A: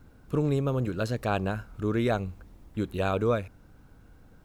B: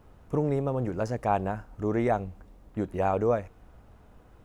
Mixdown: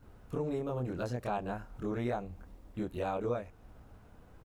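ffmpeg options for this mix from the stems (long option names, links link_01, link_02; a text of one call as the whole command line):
ffmpeg -i stem1.wav -i stem2.wav -filter_complex "[0:a]volume=-7dB[link_01];[1:a]adelay=25,volume=-3dB[link_02];[link_01][link_02]amix=inputs=2:normalize=0,acompressor=threshold=-36dB:ratio=2" out.wav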